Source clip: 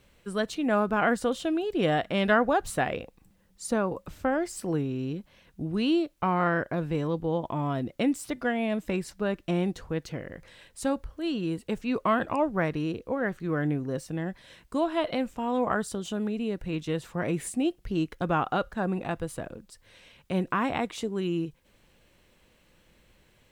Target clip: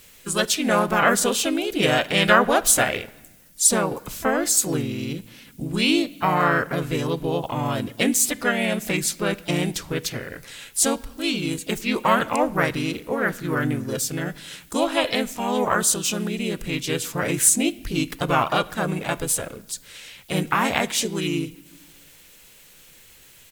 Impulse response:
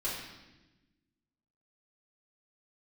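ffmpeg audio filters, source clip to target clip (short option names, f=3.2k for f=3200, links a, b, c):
-filter_complex "[0:a]asplit=3[a][b][c];[b]asetrate=37084,aresample=44100,atempo=1.18921,volume=-1dB[d];[c]asetrate=55563,aresample=44100,atempo=0.793701,volume=-18dB[e];[a][d][e]amix=inputs=3:normalize=0,asplit=2[f][g];[1:a]atrim=start_sample=2205,asetrate=41454,aresample=44100[h];[g][h]afir=irnorm=-1:irlink=0,volume=-22dB[i];[f][i]amix=inputs=2:normalize=0,crystalizer=i=7.5:c=0"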